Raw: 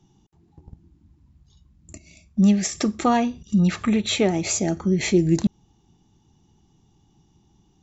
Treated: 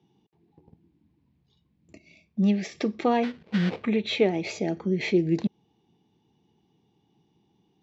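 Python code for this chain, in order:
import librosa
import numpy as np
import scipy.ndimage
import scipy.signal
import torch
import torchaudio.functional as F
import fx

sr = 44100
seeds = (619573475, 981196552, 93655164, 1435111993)

y = fx.sample_hold(x, sr, seeds[0], rate_hz=1700.0, jitter_pct=20, at=(3.23, 3.84))
y = fx.cabinet(y, sr, low_hz=160.0, low_slope=12, high_hz=4400.0, hz=(460.0, 1300.0, 2300.0), db=(7, -7, 4))
y = y * 10.0 ** (-4.5 / 20.0)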